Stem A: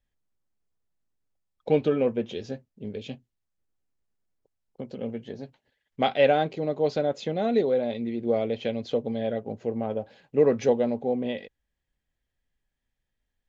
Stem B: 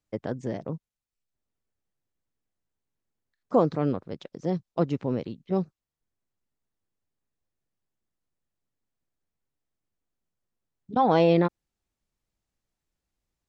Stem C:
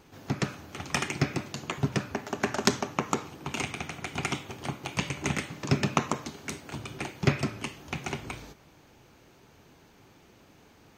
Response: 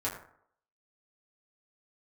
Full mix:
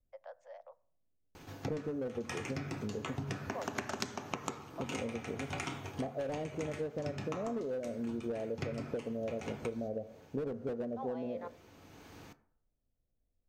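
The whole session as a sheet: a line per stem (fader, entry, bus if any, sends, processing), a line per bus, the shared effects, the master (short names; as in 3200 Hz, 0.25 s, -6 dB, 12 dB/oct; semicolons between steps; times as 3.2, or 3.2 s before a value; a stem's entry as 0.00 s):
-0.5 dB, 0.00 s, send -16.5 dB, steep low-pass 720 Hz 96 dB/oct; slew limiter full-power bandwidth 41 Hz
-12.0 dB, 0.00 s, send -22 dB, steep high-pass 530 Hz 96 dB/oct; high shelf 2300 Hz -11.5 dB
+2.5 dB, 1.35 s, send -14 dB, vibrato 1.5 Hz 6.1 cents; auto duck -14 dB, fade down 0.25 s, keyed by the first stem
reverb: on, RT60 0.65 s, pre-delay 5 ms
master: compressor 12:1, threshold -34 dBFS, peak gain reduction 20.5 dB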